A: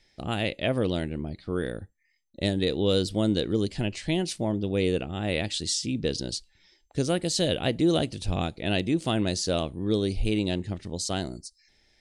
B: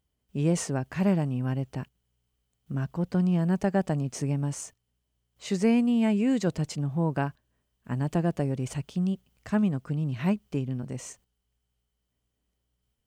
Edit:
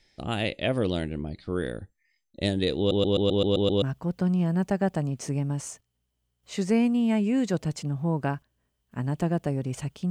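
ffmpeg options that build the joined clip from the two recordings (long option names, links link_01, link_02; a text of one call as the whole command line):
ffmpeg -i cue0.wav -i cue1.wav -filter_complex "[0:a]apad=whole_dur=10.1,atrim=end=10.1,asplit=8[link_01][link_02][link_03][link_04][link_05][link_06][link_07][link_08];[link_01]atrim=end=2.912[link_09];[link_02]atrim=start=2.778:end=2.912[link_10];[link_03]atrim=start=2.778:end=2.912[link_11];[link_04]atrim=start=2.778:end=2.912[link_12];[link_05]atrim=start=2.778:end=2.912[link_13];[link_06]atrim=start=2.778:end=2.912[link_14];[link_07]atrim=start=2.778:end=2.912[link_15];[link_08]atrim=start=2.778:end=2.912[link_16];[1:a]atrim=start=2.748:end=9.03[link_17];[link_09][link_10]acrossfade=duration=0.004:curve1=hsin:curve2=hsin[link_18];[link_18][link_11]acrossfade=duration=0.004:curve1=hsin:curve2=hsin[link_19];[link_19][link_12]acrossfade=duration=0.004:curve1=hsin:curve2=hsin[link_20];[link_20][link_13]acrossfade=duration=0.004:curve1=hsin:curve2=hsin[link_21];[link_21][link_14]acrossfade=duration=0.004:curve1=hsin:curve2=hsin[link_22];[link_22][link_15]acrossfade=duration=0.004:curve1=hsin:curve2=hsin[link_23];[link_23][link_16]acrossfade=duration=0.004:curve1=hsin:curve2=hsin[link_24];[link_24][link_17]acrossfade=duration=0.004:curve1=hsin:curve2=hsin" out.wav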